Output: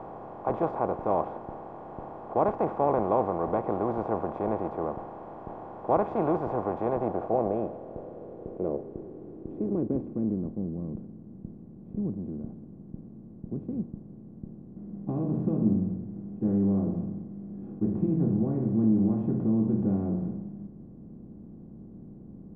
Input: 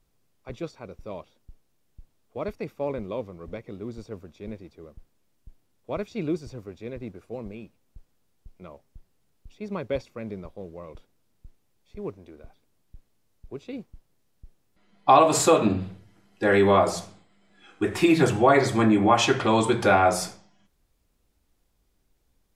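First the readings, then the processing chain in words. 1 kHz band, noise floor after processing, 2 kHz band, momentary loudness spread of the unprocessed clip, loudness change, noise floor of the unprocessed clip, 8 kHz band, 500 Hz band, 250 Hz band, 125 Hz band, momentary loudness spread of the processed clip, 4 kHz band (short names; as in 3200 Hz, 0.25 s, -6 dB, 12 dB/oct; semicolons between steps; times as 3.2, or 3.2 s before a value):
-6.5 dB, -47 dBFS, under -15 dB, 22 LU, -6.5 dB, -69 dBFS, under -40 dB, -4.5 dB, +0.5 dB, +1.5 dB, 19 LU, under -30 dB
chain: per-bin compression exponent 0.4; low-pass sweep 860 Hz -> 210 Hz, 6.84–10.77; gain -9 dB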